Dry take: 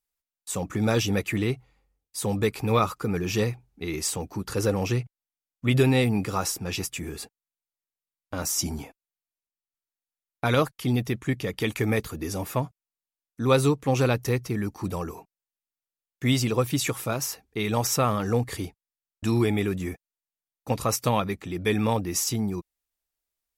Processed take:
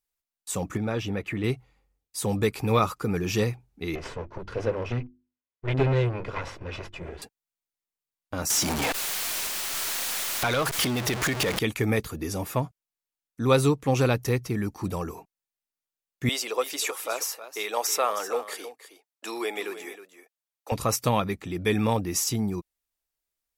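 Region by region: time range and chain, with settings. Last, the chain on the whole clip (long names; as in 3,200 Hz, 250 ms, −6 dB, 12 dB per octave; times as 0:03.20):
0:00.77–0:01.44: downward compressor 2 to 1, threshold −27 dBFS + bass and treble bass −1 dB, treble −14 dB
0:03.95–0:07.22: lower of the sound and its delayed copy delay 2 ms + low-pass filter 2,500 Hz + mains-hum notches 50/100/150/200/250/300/350 Hz
0:08.50–0:11.59: converter with a step at zero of −25 dBFS + downward compressor 4 to 1, threshold −24 dBFS + mid-hump overdrive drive 14 dB, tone 7,900 Hz, clips at −15.5 dBFS
0:16.29–0:20.72: high-pass filter 440 Hz 24 dB per octave + single-tap delay 316 ms −12.5 dB
whole clip: no processing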